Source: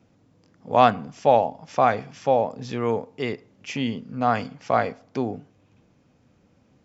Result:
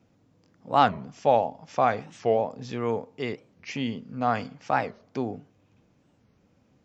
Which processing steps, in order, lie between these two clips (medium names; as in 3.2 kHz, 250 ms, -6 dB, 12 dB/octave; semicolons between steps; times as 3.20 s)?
warped record 45 rpm, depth 250 cents; trim -3.5 dB